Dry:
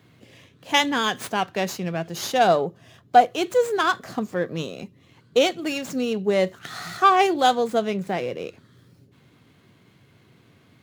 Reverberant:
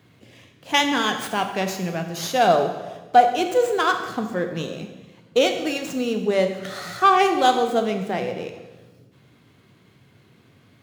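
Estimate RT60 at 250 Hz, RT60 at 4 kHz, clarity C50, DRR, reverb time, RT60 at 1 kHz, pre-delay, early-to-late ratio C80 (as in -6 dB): 1.4 s, 1.1 s, 8.0 dB, 6.0 dB, 1.2 s, 1.2 s, 22 ms, 9.5 dB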